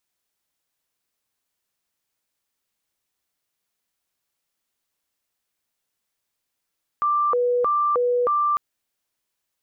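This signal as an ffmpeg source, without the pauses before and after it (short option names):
-f lavfi -i "aevalsrc='0.133*sin(2*PI*(834.5*t+345.5/1.6*(0.5-abs(mod(1.6*t,1)-0.5))))':d=1.55:s=44100"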